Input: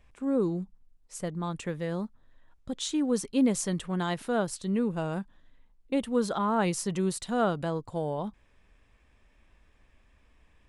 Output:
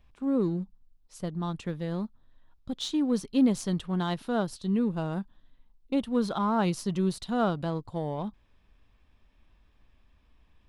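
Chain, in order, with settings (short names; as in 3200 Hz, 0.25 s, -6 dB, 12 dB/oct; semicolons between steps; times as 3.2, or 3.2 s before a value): graphic EQ 500/2000/4000/8000 Hz -5/-7/+4/-11 dB; in parallel at -8 dB: backlash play -31 dBFS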